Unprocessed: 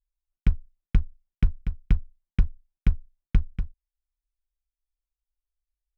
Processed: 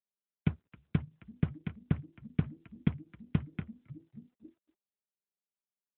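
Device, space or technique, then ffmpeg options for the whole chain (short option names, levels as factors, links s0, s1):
mobile call with aggressive noise cancelling: -filter_complex "[0:a]asplit=3[s0][s1][s2];[s0]afade=t=out:st=2.43:d=0.02[s3];[s1]aecho=1:1:4.6:0.56,afade=t=in:st=2.43:d=0.02,afade=t=out:st=2.87:d=0.02[s4];[s2]afade=t=in:st=2.87:d=0.02[s5];[s3][s4][s5]amix=inputs=3:normalize=0,asplit=5[s6][s7][s8][s9][s10];[s7]adelay=269,afreqshift=-87,volume=0.0891[s11];[s8]adelay=538,afreqshift=-174,volume=0.0447[s12];[s9]adelay=807,afreqshift=-261,volume=0.0224[s13];[s10]adelay=1076,afreqshift=-348,volume=0.0111[s14];[s6][s11][s12][s13][s14]amix=inputs=5:normalize=0,agate=range=0.0224:threshold=0.00224:ratio=3:detection=peak,adynamicequalizer=threshold=0.00708:dfrequency=160:dqfactor=3:tfrequency=160:tqfactor=3:attack=5:release=100:ratio=0.375:range=3.5:mode=cutabove:tftype=bell,highpass=180,afftdn=nr=15:nf=-63,volume=2.11" -ar 8000 -c:a libopencore_amrnb -b:a 12200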